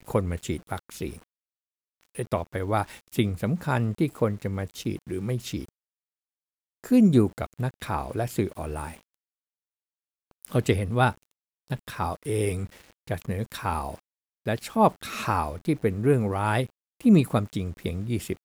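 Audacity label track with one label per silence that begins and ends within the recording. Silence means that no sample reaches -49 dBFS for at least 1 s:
5.690000	6.840000	silence
9.140000	10.310000	silence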